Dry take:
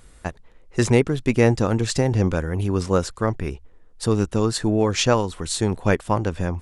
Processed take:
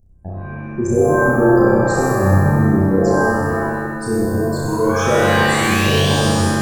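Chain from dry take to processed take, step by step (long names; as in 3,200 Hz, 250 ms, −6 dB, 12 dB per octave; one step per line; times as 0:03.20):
spectral envelope exaggerated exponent 3
flat-topped bell 2,000 Hz −15.5 dB 2.5 octaves
sound drawn into the spectrogram rise, 0:04.68–0:06.11, 910–3,600 Hz −29 dBFS
flutter between parallel walls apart 5.4 metres, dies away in 1.2 s
reverb with rising layers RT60 1.6 s, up +7 semitones, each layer −2 dB, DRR 1.5 dB
level −3 dB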